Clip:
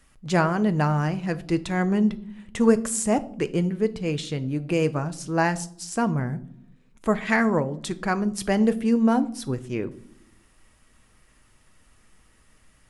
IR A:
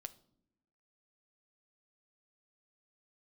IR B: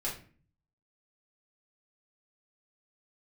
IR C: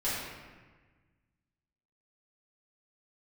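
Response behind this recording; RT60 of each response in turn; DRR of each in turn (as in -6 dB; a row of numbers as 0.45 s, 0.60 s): A; no single decay rate, 0.40 s, 1.4 s; 10.0 dB, -7.0 dB, -12.5 dB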